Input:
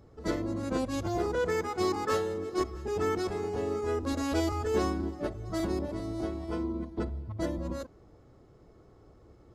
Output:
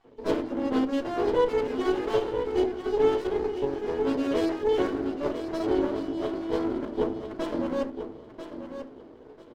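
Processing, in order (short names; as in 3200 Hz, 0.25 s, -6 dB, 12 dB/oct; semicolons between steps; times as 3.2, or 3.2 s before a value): random spectral dropouts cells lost 24%; air absorption 210 m; notches 50/100/150/200/250/300/350/400/450 Hz; vocal rider 2 s; speaker cabinet 300–8500 Hz, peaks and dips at 480 Hz +6 dB, 780 Hz -5 dB, 1700 Hz -7 dB, 3000 Hz +10 dB, 4500 Hz +3 dB; notch 520 Hz, Q 12; notch comb 1300 Hz; feedback echo 0.991 s, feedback 23%, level -9.5 dB; reverb RT60 0.40 s, pre-delay 4 ms, DRR 4 dB; running maximum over 17 samples; gain +6 dB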